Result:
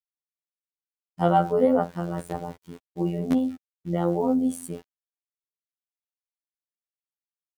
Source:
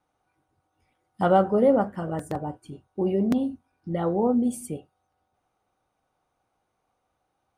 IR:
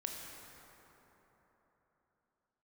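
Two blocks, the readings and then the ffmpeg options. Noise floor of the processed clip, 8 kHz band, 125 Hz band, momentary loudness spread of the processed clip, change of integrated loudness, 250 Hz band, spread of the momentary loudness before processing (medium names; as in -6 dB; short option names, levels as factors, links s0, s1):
under -85 dBFS, 0.0 dB, +1.5 dB, 18 LU, -0.5 dB, -0.5 dB, 17 LU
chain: -af "aeval=exprs='val(0)*gte(abs(val(0)),0.00596)':c=same,afftfilt=real='hypot(re,im)*cos(PI*b)':imag='0':win_size=2048:overlap=0.75,volume=1.41"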